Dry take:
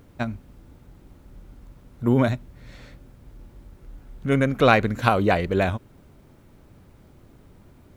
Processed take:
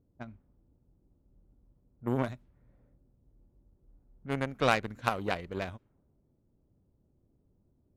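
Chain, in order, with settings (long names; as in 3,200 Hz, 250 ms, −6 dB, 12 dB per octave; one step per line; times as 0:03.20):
low-pass that shuts in the quiet parts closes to 470 Hz, open at −19.5 dBFS
harmonic generator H 7 −20 dB, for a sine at −1 dBFS
level −8 dB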